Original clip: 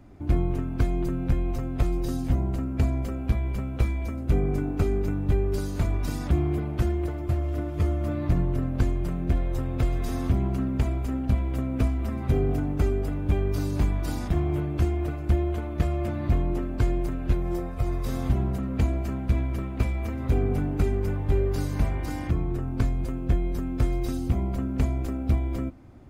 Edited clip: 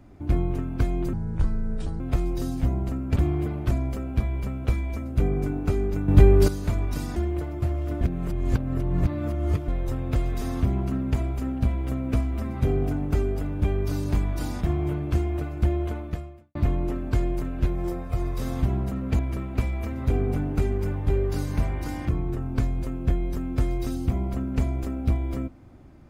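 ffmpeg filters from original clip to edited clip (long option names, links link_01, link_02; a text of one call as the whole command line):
ffmpeg -i in.wav -filter_complex "[0:a]asplit=12[link_01][link_02][link_03][link_04][link_05][link_06][link_07][link_08][link_09][link_10][link_11][link_12];[link_01]atrim=end=1.134[link_13];[link_02]atrim=start=1.13:end=1.67,asetpts=PTS-STARTPTS,asetrate=27342,aresample=44100[link_14];[link_03]atrim=start=1.666:end=2.832[link_15];[link_04]atrim=start=6.278:end=6.832[link_16];[link_05]atrim=start=2.828:end=5.202[link_17];[link_06]atrim=start=5.198:end=5.602,asetpts=PTS-STARTPTS,volume=9.5dB[link_18];[link_07]atrim=start=5.598:end=6.282[link_19];[link_08]atrim=start=6.828:end=7.682[link_20];[link_09]atrim=start=7.678:end=9.352,asetpts=PTS-STARTPTS,areverse[link_21];[link_10]atrim=start=9.348:end=16.22,asetpts=PTS-STARTPTS,afade=type=out:start_time=6.282:duration=0.59:curve=qua[link_22];[link_11]atrim=start=16.22:end=18.862,asetpts=PTS-STARTPTS,afade=type=in:duration=0.004:curve=hsin[link_23];[link_12]atrim=start=19.408[link_24];[link_13][link_14]acrossfade=duration=0.004:curve1=hsin:curve2=hsin[link_25];[link_25][link_15]acrossfade=duration=0.004:curve1=hsin:curve2=hsin[link_26];[link_26][link_16]acrossfade=duration=0.004:curve1=hsin:curve2=hsin[link_27];[link_27][link_17]acrossfade=duration=0.004:curve1=hsin:curve2=hsin[link_28];[link_28][link_18]acrossfade=duration=0.004:curve1=hsin:curve2=hsin[link_29];[link_29][link_19]acrossfade=duration=0.004:curve1=hsin:curve2=hsin[link_30];[link_30][link_20]acrossfade=duration=0.004:curve1=hsin:curve2=hsin[link_31];[link_31][link_21]acrossfade=duration=0.004:curve1=hsin:curve2=hsin[link_32];[link_22][link_23]concat=n=2:v=0:a=1[link_33];[link_32][link_33]acrossfade=duration=0.004:curve1=hsin:curve2=hsin[link_34];[link_34][link_24]acrossfade=duration=0.004:curve1=hsin:curve2=hsin" out.wav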